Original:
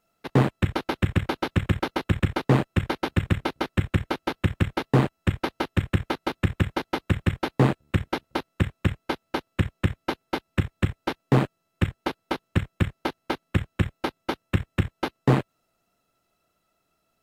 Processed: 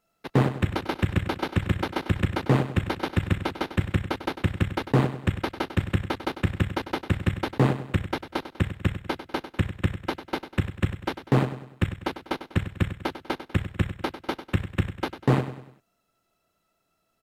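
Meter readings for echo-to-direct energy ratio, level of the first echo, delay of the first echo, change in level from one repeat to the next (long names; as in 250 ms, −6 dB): −11.0 dB, −12.0 dB, 98 ms, −7.5 dB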